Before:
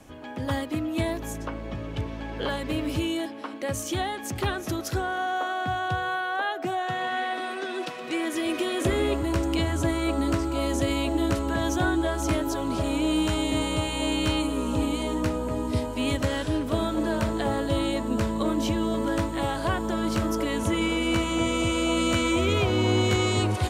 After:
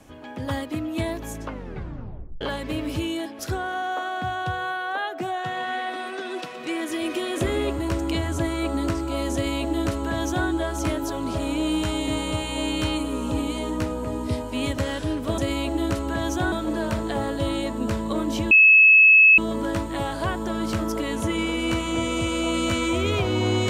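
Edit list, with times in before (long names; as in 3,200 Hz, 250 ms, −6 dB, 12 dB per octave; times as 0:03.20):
0:01.47: tape stop 0.94 s
0:03.39–0:04.83: remove
0:10.78–0:11.92: duplicate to 0:16.82
0:18.81: insert tone 2,590 Hz −9.5 dBFS 0.87 s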